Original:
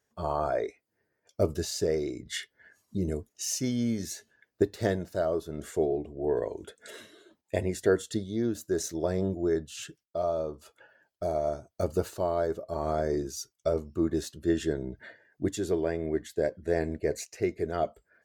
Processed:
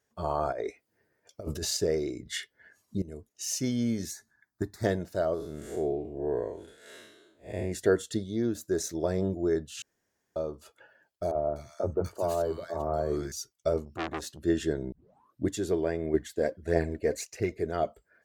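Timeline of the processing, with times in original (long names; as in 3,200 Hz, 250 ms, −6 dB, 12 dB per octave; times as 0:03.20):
0:00.52–0:01.77: compressor whose output falls as the input rises −34 dBFS
0:03.02–0:03.57: fade in, from −18.5 dB
0:04.11–0:04.84: phaser with its sweep stopped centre 1,200 Hz, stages 4
0:05.34–0:07.72: spectrum smeared in time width 147 ms
0:08.45–0:08.93: notch filter 2,900 Hz
0:09.82–0:10.36: fill with room tone
0:11.31–0:13.32: three-band delay without the direct sound mids, lows, highs 40/250 ms, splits 230/1,500 Hz
0:13.85–0:14.39: saturating transformer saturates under 2,000 Hz
0:14.92: tape start 0.55 s
0:16.14–0:17.57: phase shifter 1.6 Hz, delay 4.5 ms, feedback 47%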